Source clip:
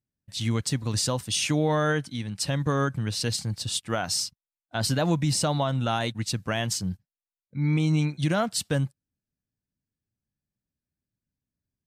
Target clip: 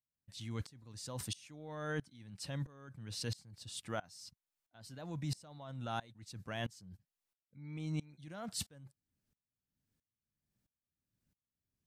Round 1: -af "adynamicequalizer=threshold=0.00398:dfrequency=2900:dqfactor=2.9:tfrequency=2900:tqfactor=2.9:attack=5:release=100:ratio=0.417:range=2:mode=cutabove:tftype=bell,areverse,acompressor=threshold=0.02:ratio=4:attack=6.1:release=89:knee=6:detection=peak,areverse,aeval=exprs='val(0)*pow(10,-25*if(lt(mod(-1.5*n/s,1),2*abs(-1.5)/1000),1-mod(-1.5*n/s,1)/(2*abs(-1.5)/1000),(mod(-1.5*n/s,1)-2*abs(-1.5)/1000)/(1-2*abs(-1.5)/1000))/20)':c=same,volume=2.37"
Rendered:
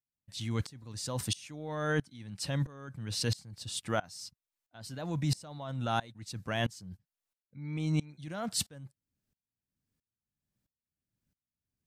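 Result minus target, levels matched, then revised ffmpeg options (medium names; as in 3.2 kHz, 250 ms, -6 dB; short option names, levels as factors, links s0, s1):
compression: peak gain reduction -8.5 dB
-af "adynamicequalizer=threshold=0.00398:dfrequency=2900:dqfactor=2.9:tfrequency=2900:tqfactor=2.9:attack=5:release=100:ratio=0.417:range=2:mode=cutabove:tftype=bell,areverse,acompressor=threshold=0.00562:ratio=4:attack=6.1:release=89:knee=6:detection=peak,areverse,aeval=exprs='val(0)*pow(10,-25*if(lt(mod(-1.5*n/s,1),2*abs(-1.5)/1000),1-mod(-1.5*n/s,1)/(2*abs(-1.5)/1000),(mod(-1.5*n/s,1)-2*abs(-1.5)/1000)/(1-2*abs(-1.5)/1000))/20)':c=same,volume=2.37"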